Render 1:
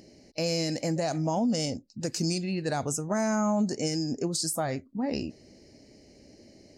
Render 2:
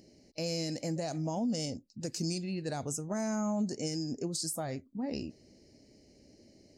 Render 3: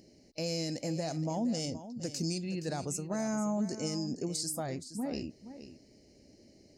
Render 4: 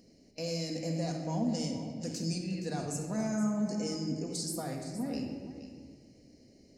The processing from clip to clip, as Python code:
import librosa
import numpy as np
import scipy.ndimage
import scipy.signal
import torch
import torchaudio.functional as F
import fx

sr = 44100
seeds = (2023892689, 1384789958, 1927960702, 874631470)

y1 = fx.peak_eq(x, sr, hz=1300.0, db=-5.0, octaves=2.0)
y1 = F.gain(torch.from_numpy(y1), -5.0).numpy()
y2 = y1 + 10.0 ** (-12.5 / 20.0) * np.pad(y1, (int(471 * sr / 1000.0), 0))[:len(y1)]
y3 = fx.room_shoebox(y2, sr, seeds[0], volume_m3=2000.0, walls='mixed', distance_m=1.8)
y3 = F.gain(torch.from_numpy(y3), -3.5).numpy()